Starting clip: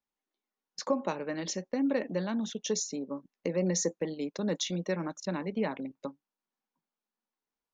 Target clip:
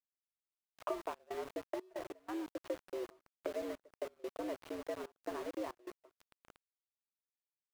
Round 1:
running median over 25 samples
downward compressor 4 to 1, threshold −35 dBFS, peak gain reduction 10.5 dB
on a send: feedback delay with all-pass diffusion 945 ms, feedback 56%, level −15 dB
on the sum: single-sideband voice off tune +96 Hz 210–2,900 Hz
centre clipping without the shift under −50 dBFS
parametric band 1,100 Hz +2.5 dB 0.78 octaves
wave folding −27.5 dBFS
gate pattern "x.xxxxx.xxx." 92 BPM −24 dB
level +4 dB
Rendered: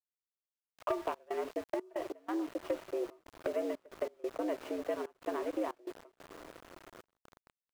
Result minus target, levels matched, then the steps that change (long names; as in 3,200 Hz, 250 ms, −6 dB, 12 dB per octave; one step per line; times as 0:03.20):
downward compressor: peak gain reduction −5.5 dB
change: downward compressor 4 to 1, threshold −42.5 dBFS, peak gain reduction 16 dB